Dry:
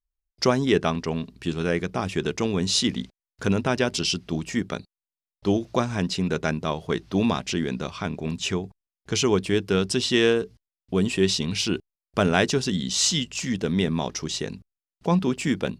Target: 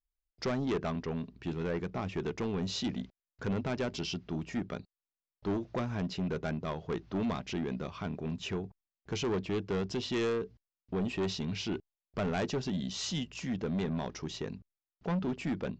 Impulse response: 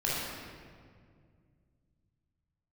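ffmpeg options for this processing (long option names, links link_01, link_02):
-af "lowpass=frequency=1800:poles=1,aresample=16000,asoftclip=type=tanh:threshold=-22.5dB,aresample=44100,volume=-5dB"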